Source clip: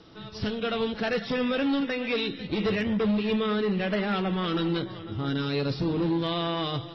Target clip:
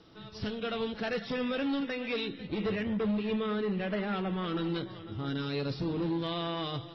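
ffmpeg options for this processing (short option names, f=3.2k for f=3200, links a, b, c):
-filter_complex "[0:a]asettb=1/sr,asplit=3[a][b][c];[a]atrim=end=2.254[d];[b]atrim=start=2.25:end=4.64,asetpts=PTS-STARTPTS,afade=t=in:d=0.004:c=qsin,afade=t=out:st=2.386:d=0.004:c=qsin,aemphasis=mode=reproduction:type=50fm[e];[c]atrim=start=4.636[f];[d][e]acrossfade=d=0.004:c1=hsin:c2=qsin[g];[g][f]acrossfade=d=0.004:c1=qsin:c2=hsin,volume=-5.5dB"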